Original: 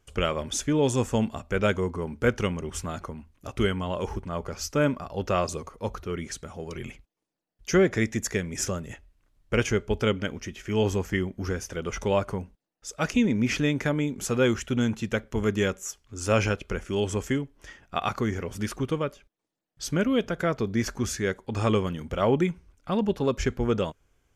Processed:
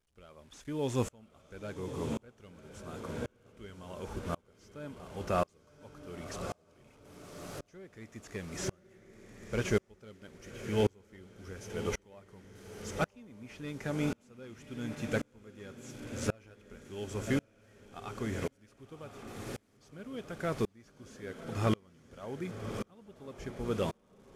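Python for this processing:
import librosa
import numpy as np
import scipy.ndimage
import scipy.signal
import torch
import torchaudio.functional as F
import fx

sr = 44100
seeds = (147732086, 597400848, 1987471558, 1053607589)

p1 = fx.delta_mod(x, sr, bps=64000, step_db=-39.0)
p2 = p1 + fx.echo_diffused(p1, sr, ms=1092, feedback_pct=58, wet_db=-8, dry=0)
p3 = fx.tremolo_decay(p2, sr, direction='swelling', hz=0.92, depth_db=34)
y = p3 * librosa.db_to_amplitude(-2.5)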